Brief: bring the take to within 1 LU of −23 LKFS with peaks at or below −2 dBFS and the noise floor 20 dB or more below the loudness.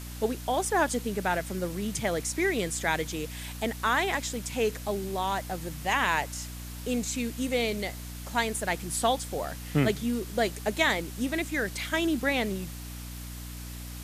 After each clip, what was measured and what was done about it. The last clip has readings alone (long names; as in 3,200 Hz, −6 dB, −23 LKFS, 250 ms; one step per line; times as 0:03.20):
mains hum 60 Hz; hum harmonics up to 300 Hz; level of the hum −38 dBFS; background noise floor −40 dBFS; target noise floor −49 dBFS; integrated loudness −29.0 LKFS; sample peak −11.5 dBFS; target loudness −23.0 LKFS
→ mains-hum notches 60/120/180/240/300 Hz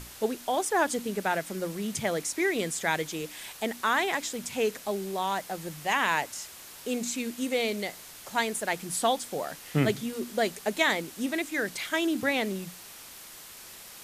mains hum none found; background noise floor −47 dBFS; target noise floor −50 dBFS
→ broadband denoise 6 dB, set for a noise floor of −47 dBFS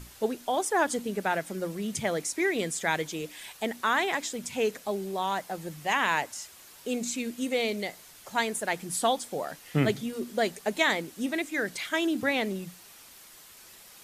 background noise floor −52 dBFS; integrated loudness −29.5 LKFS; sample peak −12.0 dBFS; target loudness −23.0 LKFS
→ level +6.5 dB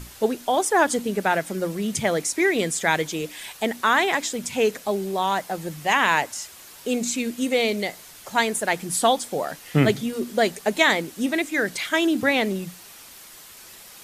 integrated loudness −23.0 LKFS; sample peak −5.5 dBFS; background noise floor −45 dBFS